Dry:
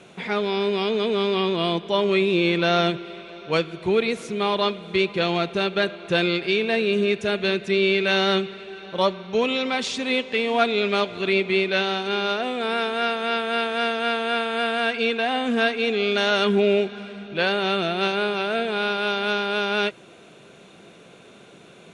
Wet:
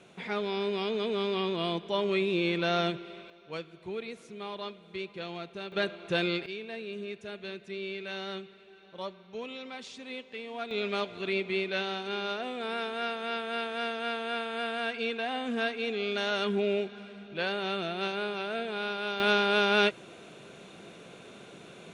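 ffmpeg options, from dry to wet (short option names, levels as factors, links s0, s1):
-af "asetnsamples=n=441:p=0,asendcmd='3.3 volume volume -16.5dB;5.72 volume volume -7.5dB;6.46 volume volume -17.5dB;10.71 volume volume -9.5dB;19.2 volume volume -1dB',volume=0.398"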